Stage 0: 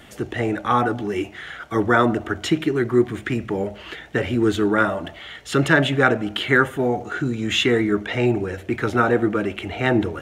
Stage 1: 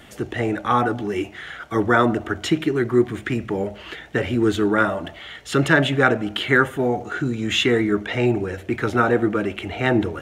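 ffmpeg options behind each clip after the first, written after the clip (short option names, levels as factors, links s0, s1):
-af anull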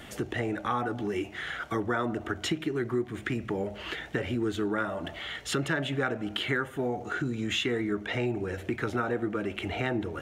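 -af "acompressor=threshold=0.0316:ratio=3"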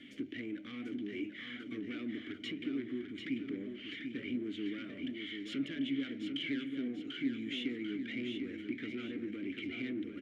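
-filter_complex "[0:a]aeval=exprs='(tanh(25.1*val(0)+0.3)-tanh(0.3))/25.1':c=same,asplit=3[s0][s1][s2];[s0]bandpass=f=270:t=q:w=8,volume=1[s3];[s1]bandpass=f=2290:t=q:w=8,volume=0.501[s4];[s2]bandpass=f=3010:t=q:w=8,volume=0.355[s5];[s3][s4][s5]amix=inputs=3:normalize=0,asplit=2[s6][s7];[s7]aecho=0:1:742|1484|2226|2968|3710:0.501|0.21|0.0884|0.0371|0.0156[s8];[s6][s8]amix=inputs=2:normalize=0,volume=1.78"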